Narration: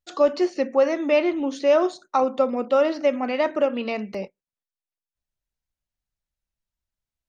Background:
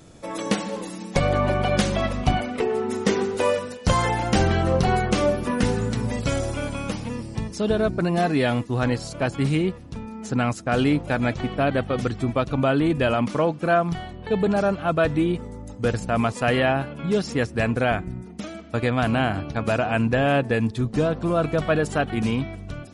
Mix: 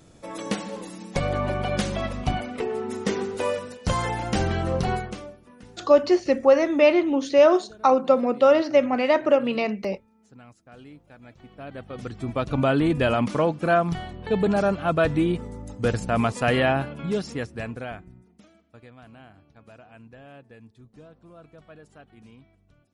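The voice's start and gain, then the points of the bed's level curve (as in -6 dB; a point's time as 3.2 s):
5.70 s, +2.5 dB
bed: 4.93 s -4.5 dB
5.4 s -26 dB
11.2 s -26 dB
12.55 s -0.5 dB
16.87 s -0.5 dB
18.95 s -26.5 dB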